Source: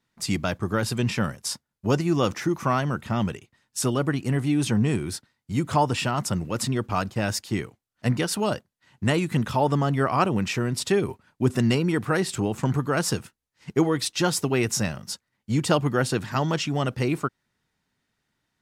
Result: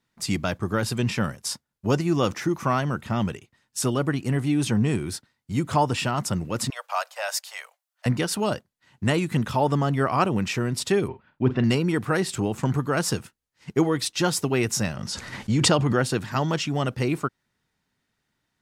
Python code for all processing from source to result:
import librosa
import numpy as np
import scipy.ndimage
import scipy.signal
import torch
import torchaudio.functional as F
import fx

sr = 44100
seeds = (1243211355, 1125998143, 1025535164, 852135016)

y = fx.chain(x, sr, fx.steep_highpass(hz=550.0, slope=72),
    fx.high_shelf(hz=11000.0, db=6.5), at=(6.7, 8.06))
y = fx.chain(y, sr, fx.lowpass(hz=3500.0, slope=24),
    fx.doubler(ms=47.0, db=-12.0), at=(11.08, 11.64))
y = fx.chain(y, sr, fx.lowpass(hz=8000.0, slope=12),
    fx.pre_swell(db_per_s=25.0), at=(14.95, 16.04))